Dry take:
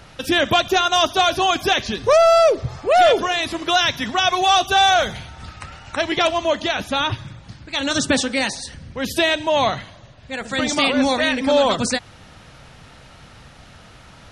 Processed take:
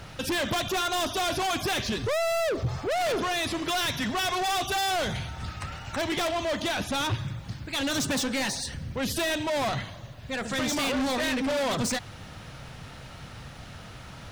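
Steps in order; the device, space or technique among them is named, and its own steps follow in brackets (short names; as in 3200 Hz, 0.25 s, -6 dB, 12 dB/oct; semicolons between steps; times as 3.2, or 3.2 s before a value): open-reel tape (soft clip -25.5 dBFS, distortion -5 dB; bell 120 Hz +4 dB 1.2 oct; white noise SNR 40 dB)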